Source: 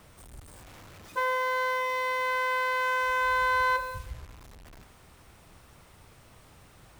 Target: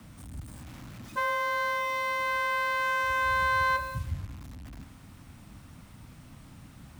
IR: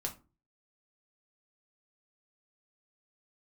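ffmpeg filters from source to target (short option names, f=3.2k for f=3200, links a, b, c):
-af "afreqshift=22,lowshelf=f=330:t=q:w=3:g=6"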